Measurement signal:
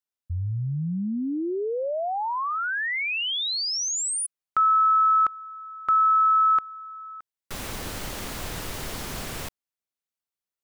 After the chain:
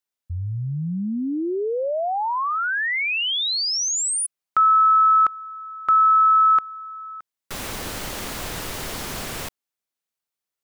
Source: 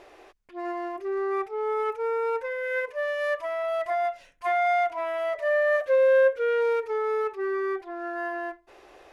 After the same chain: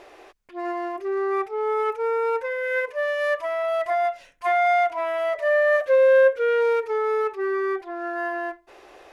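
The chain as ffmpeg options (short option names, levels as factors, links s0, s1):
-af "lowshelf=f=180:g=-4.5,volume=1.58"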